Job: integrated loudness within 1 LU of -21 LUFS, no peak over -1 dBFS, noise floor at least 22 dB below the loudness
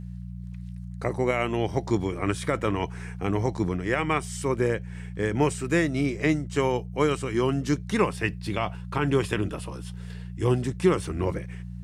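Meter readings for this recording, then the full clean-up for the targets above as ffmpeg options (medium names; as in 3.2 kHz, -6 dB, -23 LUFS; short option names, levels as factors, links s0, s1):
hum 60 Hz; highest harmonic 180 Hz; hum level -34 dBFS; loudness -27.0 LUFS; peak level -9.5 dBFS; loudness target -21.0 LUFS
-> -af "bandreject=f=60:t=h:w=4,bandreject=f=120:t=h:w=4,bandreject=f=180:t=h:w=4"
-af "volume=2"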